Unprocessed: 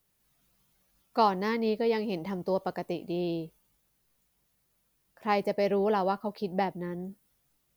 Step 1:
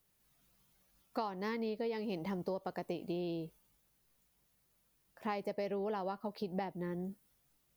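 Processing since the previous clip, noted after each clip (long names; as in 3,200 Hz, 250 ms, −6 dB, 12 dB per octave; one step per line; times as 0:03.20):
downward compressor 8 to 1, threshold −33 dBFS, peak gain reduction 14.5 dB
level −1.5 dB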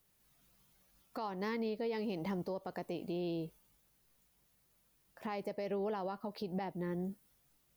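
brickwall limiter −32 dBFS, peak gain reduction 8.5 dB
level +2 dB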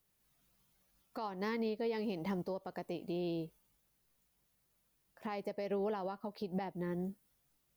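expander for the loud parts 1.5 to 1, over −46 dBFS
level +1.5 dB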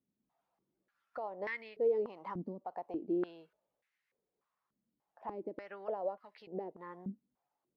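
band-pass on a step sequencer 3.4 Hz 240–2,000 Hz
level +8 dB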